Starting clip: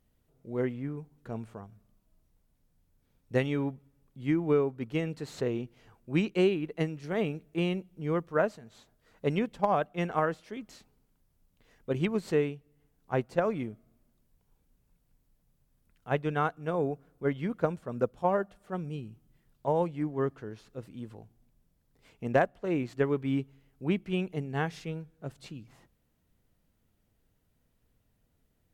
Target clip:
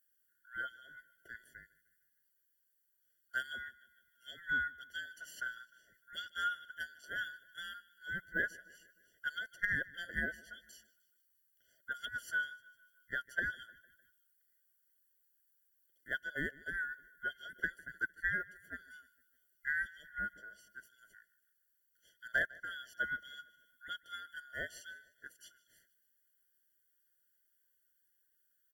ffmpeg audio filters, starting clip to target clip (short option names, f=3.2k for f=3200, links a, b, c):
-filter_complex "[0:a]afftfilt=real='real(if(lt(b,960),b+48*(1-2*mod(floor(b/48),2)),b),0)':imag='imag(if(lt(b,960),b+48*(1-2*mod(floor(b/48),2)),b),0)':win_size=2048:overlap=0.75,aemphasis=mode=production:type=75fm,asplit=2[a][b];[b]aecho=0:1:152|304|456|608:0.0841|0.0446|0.0236|0.0125[c];[a][c]amix=inputs=2:normalize=0,afftfilt=real='re*eq(mod(floor(b*sr/1024/690),2),0)':imag='im*eq(mod(floor(b*sr/1024/690),2),0)':win_size=1024:overlap=0.75,volume=-9dB"